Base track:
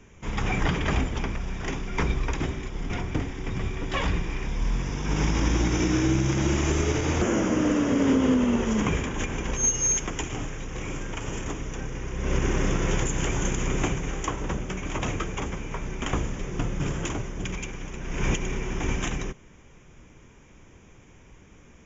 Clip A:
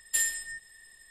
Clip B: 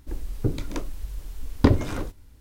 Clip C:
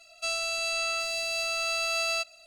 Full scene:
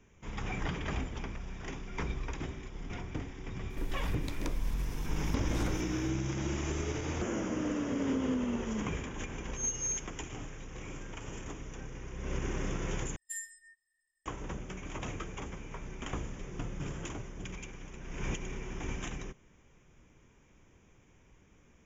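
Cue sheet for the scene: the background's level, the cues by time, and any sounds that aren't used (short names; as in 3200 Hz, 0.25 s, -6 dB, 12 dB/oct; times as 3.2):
base track -10.5 dB
3.7 add B -0.5 dB + compressor 4:1, threshold -31 dBFS
13.16 replace with A -15 dB + spectral expander 1.5:1
not used: C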